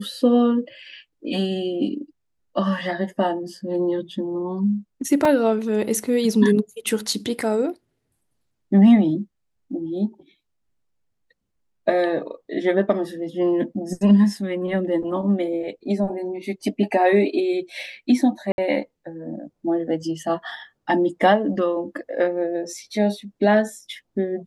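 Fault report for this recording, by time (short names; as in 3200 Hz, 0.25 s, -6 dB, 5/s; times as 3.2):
5.25 gap 2.9 ms
18.52–18.58 gap 61 ms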